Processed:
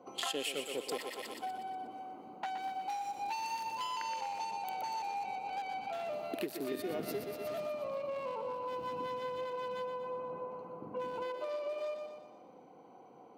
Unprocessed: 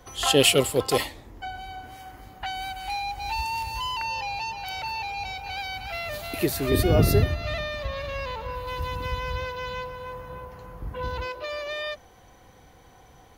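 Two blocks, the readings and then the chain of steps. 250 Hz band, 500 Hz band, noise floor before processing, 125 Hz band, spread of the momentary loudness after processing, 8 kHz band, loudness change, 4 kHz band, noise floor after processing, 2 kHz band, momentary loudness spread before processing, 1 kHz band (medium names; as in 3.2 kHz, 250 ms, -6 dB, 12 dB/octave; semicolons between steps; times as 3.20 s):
-14.0 dB, -9.5 dB, -53 dBFS, -28.5 dB, 9 LU, -16.0 dB, -12.0 dB, -15.0 dB, -56 dBFS, -14.5 dB, 18 LU, -6.0 dB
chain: local Wiener filter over 25 samples; on a send: thinning echo 121 ms, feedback 50%, high-pass 350 Hz, level -7.5 dB; on the sum: dynamic bell 2.1 kHz, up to +4 dB, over -48 dBFS, Q 1.9; high-pass 210 Hz 24 dB/octave; compression 8:1, threshold -36 dBFS, peak gain reduction 21.5 dB; trim +1 dB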